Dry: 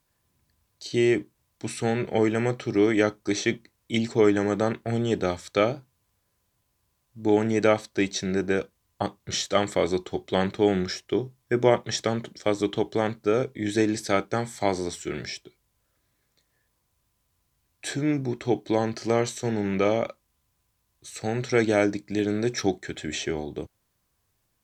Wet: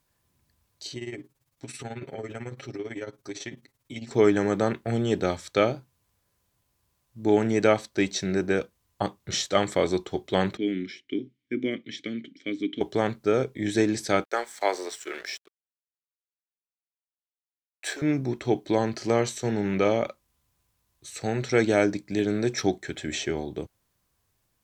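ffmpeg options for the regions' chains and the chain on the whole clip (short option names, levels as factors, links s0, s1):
-filter_complex "[0:a]asettb=1/sr,asplit=3[s0][s1][s2];[s0]atrim=end=0.924[s3];[s1]atrim=start=0.92:end=4.11,asetpts=PTS-STARTPTS,afade=t=in:d=0.004:c=qsin,afade=t=out:st=3.186:d=0.004:c=qsin,tremolo=f=18:d=0.78,aecho=1:1:7.4:0.69,atrim=end_sample=140679,acompressor=threshold=0.0141:ratio=2.5:attack=3.2:release=140:knee=1:detection=peak[s4];[s2]atrim=start=4.106[s5];[s3][s4]acrossfade=d=0.004:c1=hsin:c2=qsin[s6];[s6][s5]acrossfade=d=0.004:c1=qsin:c2=hsin,asettb=1/sr,asplit=3[s7][s8][s9];[s7]atrim=end=10.574[s10];[s8]atrim=start=10.57:end=12.81,asetpts=PTS-STARTPTS,afade=t=in:d=0.004:c=qsin,afade=t=out:st=2.236:d=0.004:c=qsin,asplit=3[s11][s12][s13];[s11]bandpass=f=270:t=q:w=8,volume=1[s14];[s12]bandpass=f=2290:t=q:w=8,volume=0.501[s15];[s13]bandpass=f=3010:t=q:w=8,volume=0.355[s16];[s14][s15][s16]amix=inputs=3:normalize=0,acontrast=82[s17];[s9]atrim=start=12.806[s18];[s10][s17]acrossfade=d=0.004:c1=hsin:c2=qsin[s19];[s19][s18]acrossfade=d=0.004:c1=qsin:c2=hsin,asettb=1/sr,asplit=3[s20][s21][s22];[s20]atrim=end=14.244[s23];[s21]atrim=start=14.24:end=18.02,asetpts=PTS-STARTPTS,afade=t=in:d=0.004:c=qsin,afade=t=out:st=3.776:d=0.004:c=qsin,highpass=f=390:w=0.5412,highpass=f=390:w=1.3066,aeval=exprs='sgn(val(0))*max(abs(val(0))-0.00335,0)':c=same,equalizer=f=1600:t=o:w=1.1:g=4[s24];[s22]atrim=start=18.016[s25];[s23][s24]acrossfade=d=0.004:c1=hsin:c2=qsin[s26];[s26][s25]acrossfade=d=0.004:c1=qsin:c2=hsin"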